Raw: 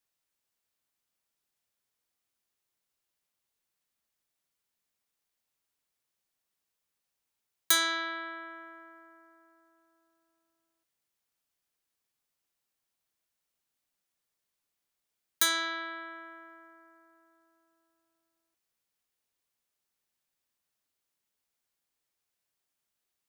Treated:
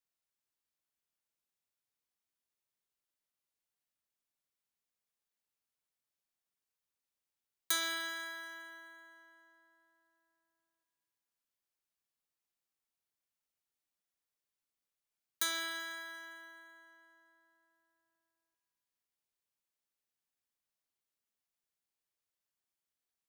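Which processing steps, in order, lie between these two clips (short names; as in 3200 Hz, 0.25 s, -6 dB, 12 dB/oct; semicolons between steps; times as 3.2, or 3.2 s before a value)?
Schroeder reverb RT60 2.2 s, combs from 29 ms, DRR 8 dB; gain -8.5 dB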